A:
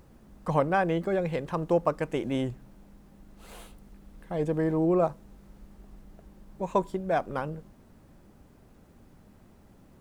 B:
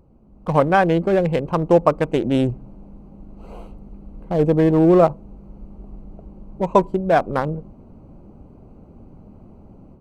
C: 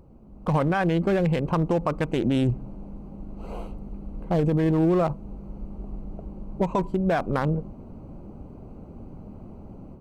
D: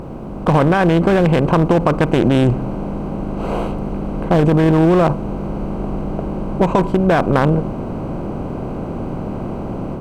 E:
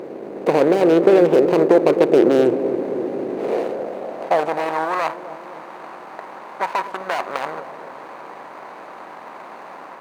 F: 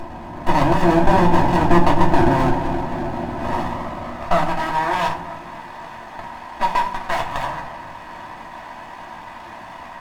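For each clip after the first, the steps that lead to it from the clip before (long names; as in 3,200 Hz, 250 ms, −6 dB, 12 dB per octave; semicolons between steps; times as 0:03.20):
adaptive Wiener filter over 25 samples; automatic gain control gain up to 10.5 dB; level +1.5 dB
dynamic equaliser 530 Hz, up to −6 dB, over −26 dBFS, Q 0.85; brickwall limiter −17 dBFS, peak gain reduction 11 dB; level +2.5 dB
compressor on every frequency bin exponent 0.6; level +6.5 dB
running median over 41 samples; bucket-brigade delay 258 ms, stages 1,024, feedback 67%, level −9 dB; high-pass filter sweep 410 Hz → 1,000 Hz, 0:03.44–0:04.95; level −1.5 dB
lower of the sound and its delayed copy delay 1.1 ms; convolution reverb RT60 0.50 s, pre-delay 3 ms, DRR −1 dB; in parallel at −7 dB: soft clipping −6.5 dBFS, distortion −15 dB; on the sum: level −4.5 dB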